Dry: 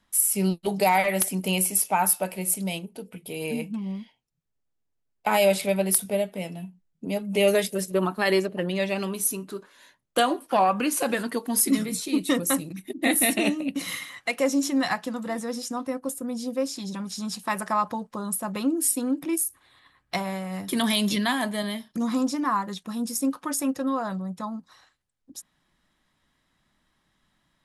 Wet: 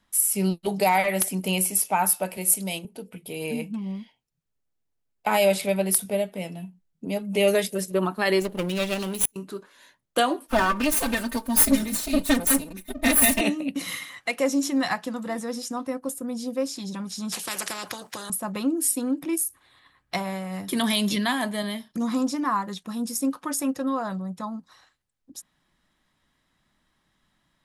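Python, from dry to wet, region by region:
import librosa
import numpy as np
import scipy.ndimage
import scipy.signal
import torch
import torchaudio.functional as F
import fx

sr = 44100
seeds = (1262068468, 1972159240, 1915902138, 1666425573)

y = fx.chain(x, sr, fx.highpass(hz=180.0, slope=12),
    fx.high_shelf(hz=4700.0, db=5.5), at=(2.37, 2.85))
y = fx.chain(y, sr, fx.lower_of_two(delay_ms=0.3),
    fx.high_shelf(hz=7400.0, db=12.0),
    fx.gate_flip(shuts_db=-8.0, range_db=-41), at=(8.41, 9.36))
y = fx.chain(y, sr, fx.lower_of_two(delay_ms=4.4),
    fx.high_shelf(hz=10000.0, db=8.5),
    fx.comb(ms=3.3, depth=0.62), at=(10.48, 13.41))
y = fx.chain(y, sr, fx.highpass(hz=200.0, slope=12),
    fx.spectral_comp(ratio=4.0), at=(17.32, 18.3))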